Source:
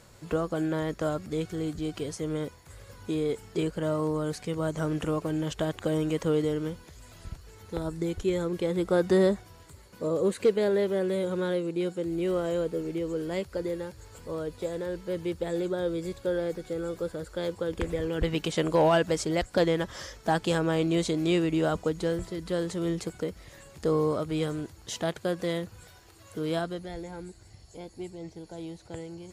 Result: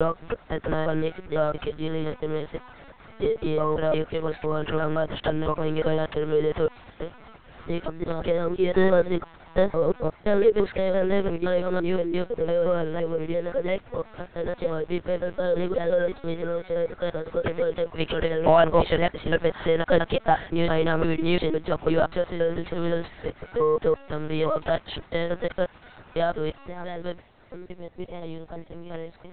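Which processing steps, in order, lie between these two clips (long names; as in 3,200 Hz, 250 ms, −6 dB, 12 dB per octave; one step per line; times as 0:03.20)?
slices reordered back to front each 171 ms, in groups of 3
high-pass filter 800 Hz 6 dB per octave
in parallel at −6.5 dB: hard clipping −31 dBFS, distortion −8 dB
on the sum: linear-prediction vocoder at 8 kHz pitch kept
high-shelf EQ 2,500 Hz −10 dB
level +9 dB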